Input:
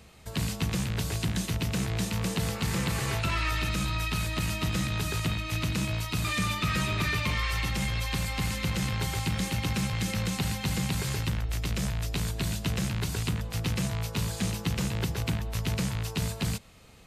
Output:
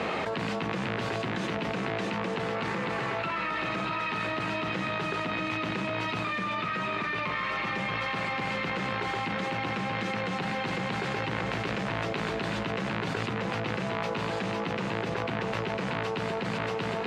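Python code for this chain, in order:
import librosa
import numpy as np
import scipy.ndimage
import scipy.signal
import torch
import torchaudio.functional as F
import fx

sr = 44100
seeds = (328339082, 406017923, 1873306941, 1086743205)

y = fx.bandpass_edges(x, sr, low_hz=320.0, high_hz=2000.0)
y = fx.echo_feedback(y, sr, ms=633, feedback_pct=43, wet_db=-8.0)
y = fx.env_flatten(y, sr, amount_pct=100)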